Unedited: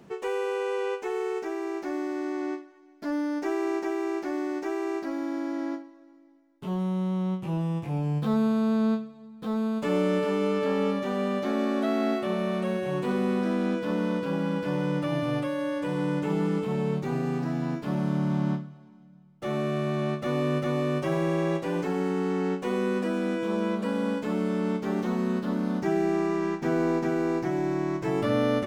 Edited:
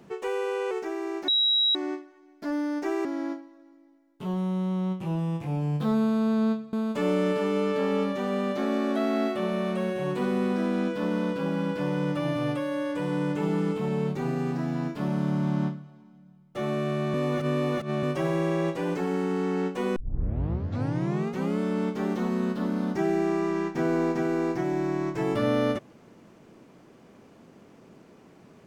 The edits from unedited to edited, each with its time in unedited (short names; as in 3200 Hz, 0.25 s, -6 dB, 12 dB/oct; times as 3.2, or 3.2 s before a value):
0.71–1.31 cut
1.88–2.35 bleep 3860 Hz -19.5 dBFS
3.65–5.47 cut
9.15–9.6 cut
20.01–20.9 reverse
22.83 tape start 1.63 s